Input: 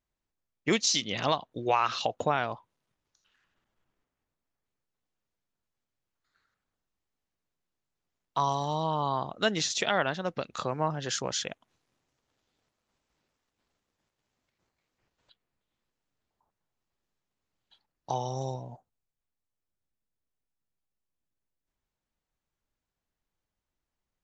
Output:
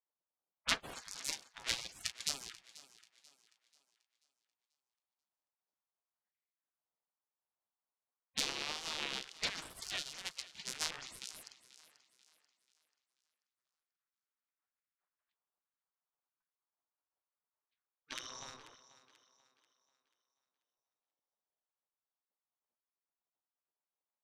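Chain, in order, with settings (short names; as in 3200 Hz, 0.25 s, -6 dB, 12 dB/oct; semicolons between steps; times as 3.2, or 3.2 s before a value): cycle switcher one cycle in 2, inverted; low-pass opened by the level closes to 710 Hz, open at -26.5 dBFS; spectral gate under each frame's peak -20 dB weak; treble ducked by the level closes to 390 Hz, closed at -27 dBFS; thinning echo 0.487 s, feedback 39%, high-pass 160 Hz, level -15.5 dB; upward expander 1.5:1, over -47 dBFS; gain +6.5 dB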